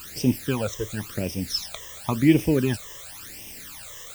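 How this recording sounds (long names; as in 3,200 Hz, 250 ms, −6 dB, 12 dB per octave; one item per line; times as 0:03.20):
a quantiser's noise floor 6 bits, dither triangular
phaser sweep stages 12, 0.94 Hz, lowest notch 240–1,400 Hz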